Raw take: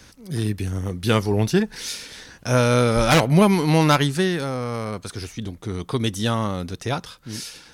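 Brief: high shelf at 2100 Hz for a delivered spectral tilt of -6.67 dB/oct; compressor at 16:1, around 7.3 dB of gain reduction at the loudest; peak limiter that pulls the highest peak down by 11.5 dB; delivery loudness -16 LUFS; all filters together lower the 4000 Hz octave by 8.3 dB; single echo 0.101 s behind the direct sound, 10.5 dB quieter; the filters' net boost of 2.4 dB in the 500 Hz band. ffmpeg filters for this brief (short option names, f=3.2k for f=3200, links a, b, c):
-af "equalizer=f=500:t=o:g=3.5,highshelf=f=2.1k:g=-7.5,equalizer=f=4k:t=o:g=-3.5,acompressor=threshold=-18dB:ratio=16,alimiter=limit=-22dB:level=0:latency=1,aecho=1:1:101:0.299,volume=15.5dB"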